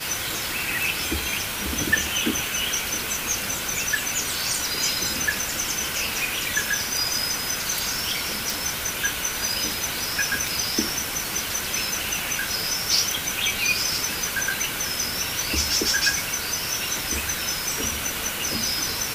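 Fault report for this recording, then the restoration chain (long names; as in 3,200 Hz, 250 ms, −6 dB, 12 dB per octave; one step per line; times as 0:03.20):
0:08.50: click
0:10.48: click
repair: click removal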